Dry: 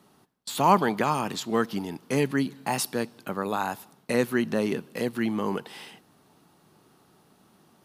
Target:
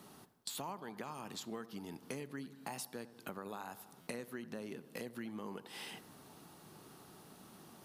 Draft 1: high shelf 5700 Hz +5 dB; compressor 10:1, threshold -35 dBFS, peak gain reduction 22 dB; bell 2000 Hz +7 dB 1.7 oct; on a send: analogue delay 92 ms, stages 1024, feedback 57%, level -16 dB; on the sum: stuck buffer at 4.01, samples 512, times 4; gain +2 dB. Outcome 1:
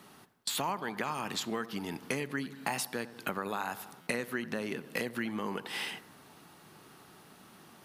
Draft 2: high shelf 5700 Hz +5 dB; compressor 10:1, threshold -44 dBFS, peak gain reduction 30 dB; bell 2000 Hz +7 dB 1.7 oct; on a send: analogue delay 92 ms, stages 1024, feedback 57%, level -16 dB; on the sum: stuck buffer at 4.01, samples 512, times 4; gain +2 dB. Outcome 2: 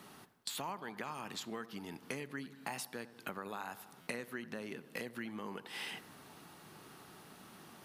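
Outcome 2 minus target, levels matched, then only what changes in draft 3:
2000 Hz band +3.5 dB
remove: bell 2000 Hz +7 dB 1.7 oct

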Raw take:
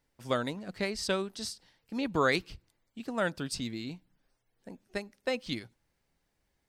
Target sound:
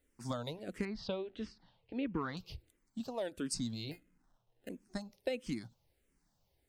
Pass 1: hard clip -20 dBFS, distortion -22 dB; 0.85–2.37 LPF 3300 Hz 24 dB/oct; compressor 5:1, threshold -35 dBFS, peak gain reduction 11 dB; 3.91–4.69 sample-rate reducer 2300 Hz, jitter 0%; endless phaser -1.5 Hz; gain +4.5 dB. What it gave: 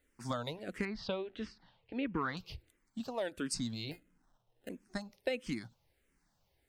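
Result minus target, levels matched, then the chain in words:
2000 Hz band +4.0 dB
hard clip -20 dBFS, distortion -22 dB; 0.85–2.37 LPF 3300 Hz 24 dB/oct; compressor 5:1, threshold -35 dBFS, peak gain reduction 11 dB; bell 1700 Hz -6 dB 1.8 oct; 3.91–4.69 sample-rate reducer 2300 Hz, jitter 0%; endless phaser -1.5 Hz; gain +4.5 dB

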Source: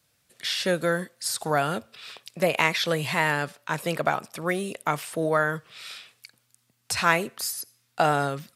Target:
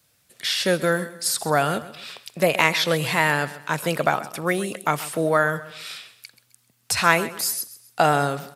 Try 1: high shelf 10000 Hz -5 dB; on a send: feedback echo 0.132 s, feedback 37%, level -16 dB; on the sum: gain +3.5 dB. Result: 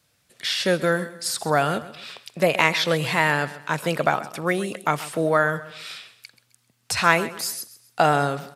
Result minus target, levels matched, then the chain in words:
8000 Hz band -3.5 dB
high shelf 10000 Hz +5 dB; on a send: feedback echo 0.132 s, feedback 37%, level -16 dB; on the sum: gain +3.5 dB

